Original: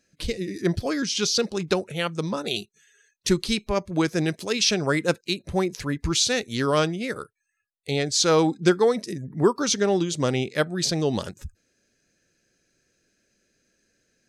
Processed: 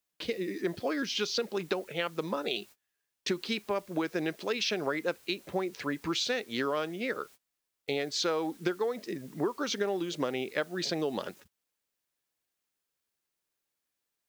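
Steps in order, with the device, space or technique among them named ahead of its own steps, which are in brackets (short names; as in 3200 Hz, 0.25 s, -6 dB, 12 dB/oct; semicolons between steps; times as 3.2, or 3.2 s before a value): baby monitor (BPF 300–3300 Hz; compressor 10:1, threshold -27 dBFS, peak gain reduction 12.5 dB; white noise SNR 25 dB; gate -49 dBFS, range -26 dB)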